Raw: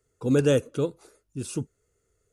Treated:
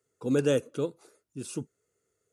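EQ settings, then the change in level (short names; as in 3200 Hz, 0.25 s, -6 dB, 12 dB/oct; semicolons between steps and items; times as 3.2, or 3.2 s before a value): HPF 150 Hz 12 dB/oct; -3.5 dB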